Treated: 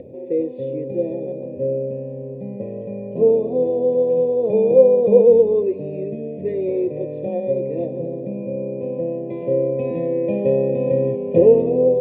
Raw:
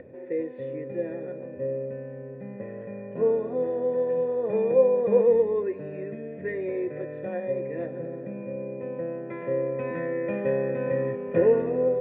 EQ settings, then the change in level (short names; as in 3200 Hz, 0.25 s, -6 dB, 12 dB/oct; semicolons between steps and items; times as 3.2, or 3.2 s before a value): Butterworth band-stop 1500 Hz, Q 0.62; +8.5 dB